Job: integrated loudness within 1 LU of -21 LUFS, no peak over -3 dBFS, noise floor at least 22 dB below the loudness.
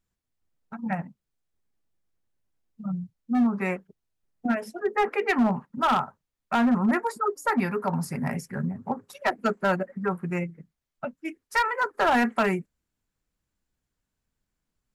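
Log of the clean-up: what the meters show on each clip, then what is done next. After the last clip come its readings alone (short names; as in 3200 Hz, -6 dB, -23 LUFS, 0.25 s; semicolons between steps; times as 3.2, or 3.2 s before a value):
clipped 1.1%; flat tops at -17.0 dBFS; loudness -27.0 LUFS; peak -17.0 dBFS; loudness target -21.0 LUFS
-> clip repair -17 dBFS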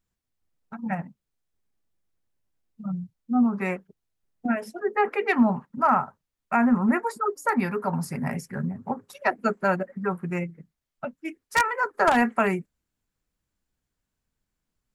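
clipped 0.0%; loudness -25.5 LUFS; peak -8.0 dBFS; loudness target -21.0 LUFS
-> gain +4.5 dB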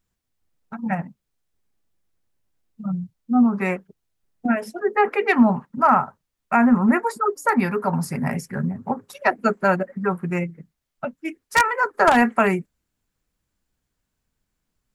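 loudness -21.0 LUFS; peak -3.5 dBFS; noise floor -79 dBFS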